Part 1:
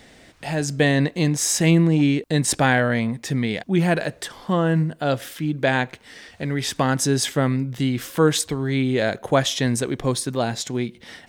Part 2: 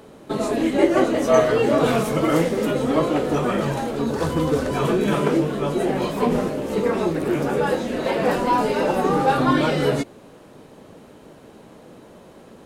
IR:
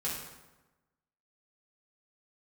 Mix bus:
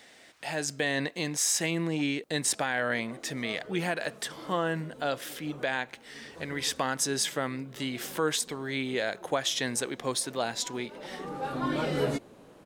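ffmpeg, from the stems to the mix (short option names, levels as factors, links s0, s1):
-filter_complex "[0:a]highpass=f=700:p=1,volume=0.708,asplit=2[s0][s1];[1:a]adelay=2150,volume=0.422[s2];[s1]apad=whole_len=652921[s3];[s2][s3]sidechaincompress=threshold=0.00447:ratio=6:attack=6.2:release=830[s4];[s0][s4]amix=inputs=2:normalize=0,alimiter=limit=0.158:level=0:latency=1:release=149"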